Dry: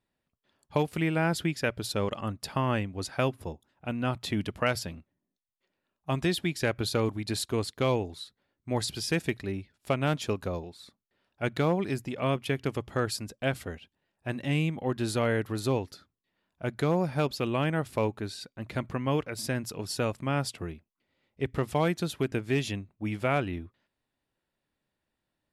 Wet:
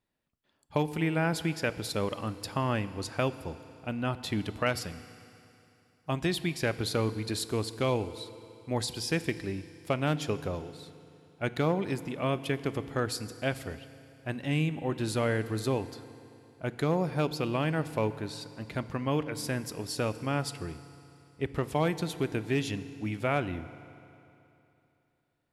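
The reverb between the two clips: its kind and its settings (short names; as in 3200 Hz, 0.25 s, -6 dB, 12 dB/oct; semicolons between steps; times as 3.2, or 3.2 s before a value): FDN reverb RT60 2.9 s, high-frequency decay 0.95×, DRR 13 dB; gain -1.5 dB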